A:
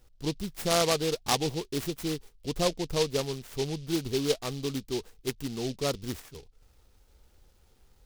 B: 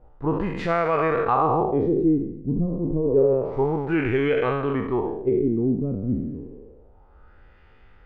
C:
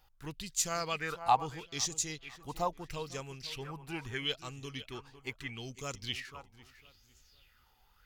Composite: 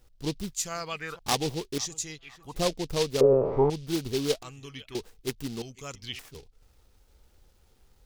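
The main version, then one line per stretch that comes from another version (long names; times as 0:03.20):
A
0:00.53–0:01.19: punch in from C
0:01.78–0:02.56: punch in from C
0:03.21–0:03.70: punch in from B
0:04.43–0:04.95: punch in from C
0:05.62–0:06.19: punch in from C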